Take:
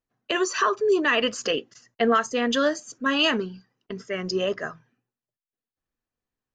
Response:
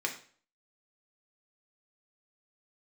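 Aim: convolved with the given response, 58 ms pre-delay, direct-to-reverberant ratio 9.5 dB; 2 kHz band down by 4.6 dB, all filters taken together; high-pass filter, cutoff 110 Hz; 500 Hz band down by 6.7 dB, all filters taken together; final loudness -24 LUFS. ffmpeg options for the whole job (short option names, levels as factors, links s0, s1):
-filter_complex "[0:a]highpass=110,equalizer=f=500:t=o:g=-8.5,equalizer=f=2000:t=o:g=-5.5,asplit=2[s0][s1];[1:a]atrim=start_sample=2205,adelay=58[s2];[s1][s2]afir=irnorm=-1:irlink=0,volume=0.178[s3];[s0][s3]amix=inputs=2:normalize=0,volume=1.58"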